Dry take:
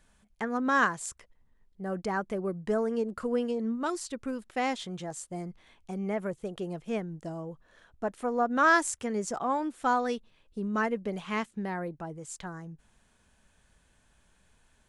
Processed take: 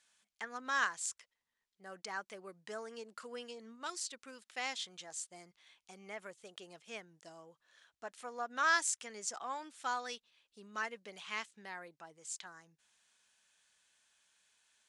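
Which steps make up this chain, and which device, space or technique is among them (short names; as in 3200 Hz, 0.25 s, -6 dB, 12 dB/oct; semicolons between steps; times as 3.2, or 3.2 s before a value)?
piezo pickup straight into a mixer (LPF 5500 Hz 12 dB/oct; differentiator); gain +6.5 dB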